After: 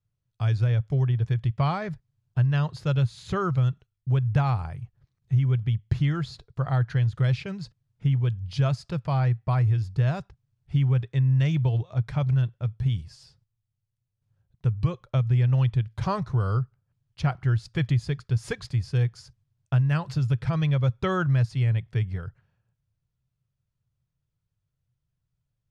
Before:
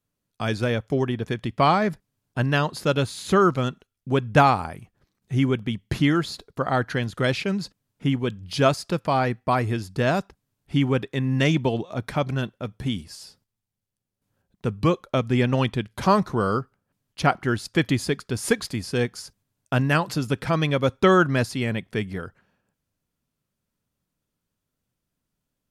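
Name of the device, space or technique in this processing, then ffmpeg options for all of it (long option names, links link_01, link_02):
jukebox: -af "lowpass=6500,lowshelf=frequency=170:width_type=q:width=3:gain=10.5,acompressor=threshold=-11dB:ratio=4,volume=-8dB"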